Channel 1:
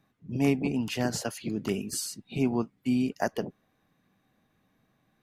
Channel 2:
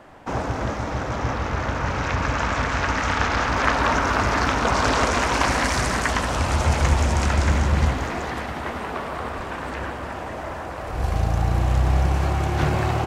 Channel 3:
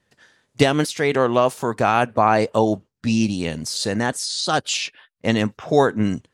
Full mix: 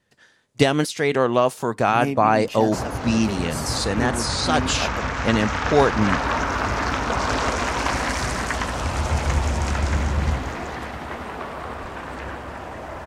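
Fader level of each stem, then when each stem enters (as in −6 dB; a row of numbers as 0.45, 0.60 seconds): −1.5, −2.5, −1.0 decibels; 1.60, 2.45, 0.00 seconds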